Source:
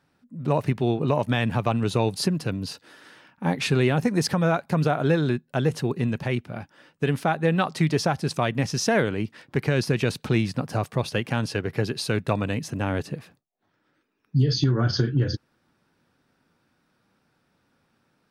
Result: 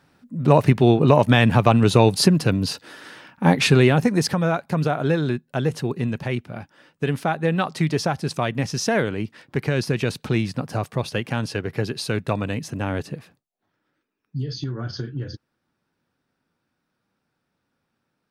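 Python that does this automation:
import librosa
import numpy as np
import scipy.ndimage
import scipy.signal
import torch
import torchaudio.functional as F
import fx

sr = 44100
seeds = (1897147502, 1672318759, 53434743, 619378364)

y = fx.gain(x, sr, db=fx.line((3.57, 8.0), (4.46, 0.5), (13.08, 0.5), (14.41, -7.5)))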